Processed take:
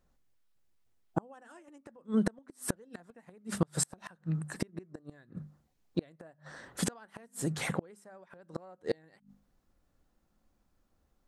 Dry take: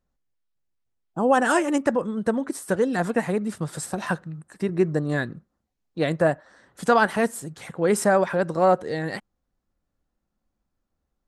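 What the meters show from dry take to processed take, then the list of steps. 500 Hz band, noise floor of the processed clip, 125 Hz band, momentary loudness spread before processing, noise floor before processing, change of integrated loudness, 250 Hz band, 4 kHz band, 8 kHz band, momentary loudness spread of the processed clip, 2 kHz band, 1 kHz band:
−19.0 dB, −75 dBFS, −8.0 dB, 13 LU, −80 dBFS, −13.0 dB, −11.0 dB, −7.5 dB, −4.0 dB, 22 LU, −18.0 dB, −22.0 dB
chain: mains-hum notches 50/100/150/200/250 Hz
in parallel at +2 dB: downward compressor 16 to 1, threshold −30 dBFS, peak gain reduction 17.5 dB
on the sum: gate with flip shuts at −15 dBFS, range −34 dB
level −1.5 dB

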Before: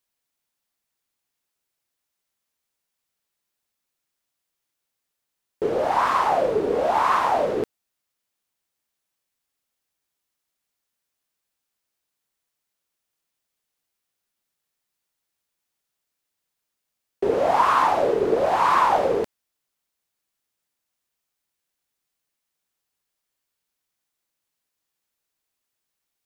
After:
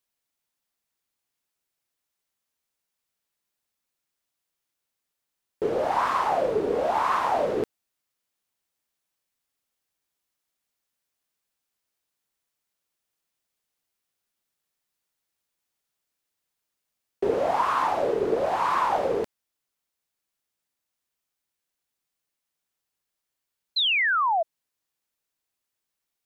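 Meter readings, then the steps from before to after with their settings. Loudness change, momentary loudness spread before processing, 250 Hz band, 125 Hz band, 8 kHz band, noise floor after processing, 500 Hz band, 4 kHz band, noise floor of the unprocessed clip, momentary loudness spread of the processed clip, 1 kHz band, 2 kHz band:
−3.5 dB, 9 LU, −3.0 dB, −3.5 dB, −4.5 dB, −84 dBFS, −3.0 dB, +8.5 dB, −82 dBFS, 9 LU, −4.0 dB, +2.0 dB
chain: speech leveller 0.5 s
sound drawn into the spectrogram fall, 0:23.76–0:24.43, 630–4,200 Hz −19 dBFS
level −3.5 dB

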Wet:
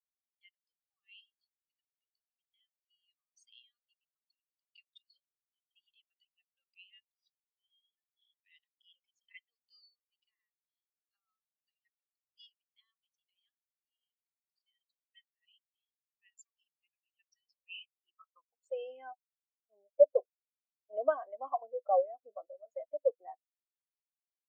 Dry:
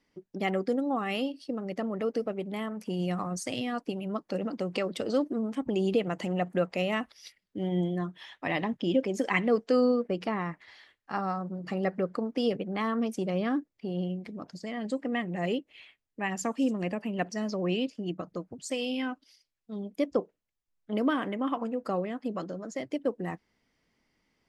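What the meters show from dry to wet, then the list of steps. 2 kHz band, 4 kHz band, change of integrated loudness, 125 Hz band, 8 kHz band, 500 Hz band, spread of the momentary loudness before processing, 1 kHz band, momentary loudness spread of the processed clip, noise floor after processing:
−20.5 dB, −18.5 dB, −1.5 dB, below −40 dB, below −20 dB, −6.0 dB, 10 LU, −8.0 dB, 23 LU, below −85 dBFS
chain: high-pass filter sweep 3,600 Hz → 660 Hz, 0:17.47–0:18.71
every bin expanded away from the loudest bin 2.5 to 1
level +2.5 dB

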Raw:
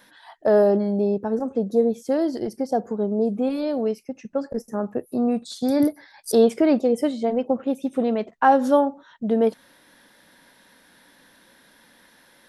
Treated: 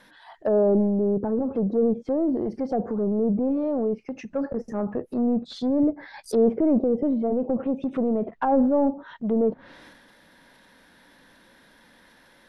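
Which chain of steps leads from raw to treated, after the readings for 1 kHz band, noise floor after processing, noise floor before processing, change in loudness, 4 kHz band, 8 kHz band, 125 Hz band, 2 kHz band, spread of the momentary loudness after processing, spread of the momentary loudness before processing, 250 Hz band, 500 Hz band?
−7.0 dB, −56 dBFS, −56 dBFS, −2.0 dB, −7.5 dB, below −10 dB, can't be measured, −9.0 dB, 9 LU, 10 LU, 0.0 dB, −3.0 dB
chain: high-shelf EQ 5,900 Hz −9.5 dB
transient designer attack −3 dB, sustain +8 dB
in parallel at −4 dB: soft clipping −21.5 dBFS, distortion −9 dB
on the sum: low-shelf EQ 64 Hz +8.5 dB
treble cut that deepens with the level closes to 670 Hz, closed at −16 dBFS
level −4 dB

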